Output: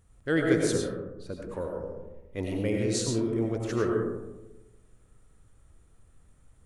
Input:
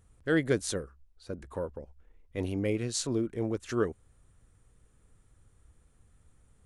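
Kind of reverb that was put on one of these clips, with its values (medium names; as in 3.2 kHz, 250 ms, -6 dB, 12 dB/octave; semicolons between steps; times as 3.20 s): algorithmic reverb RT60 1.1 s, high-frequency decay 0.3×, pre-delay 55 ms, DRR 0 dB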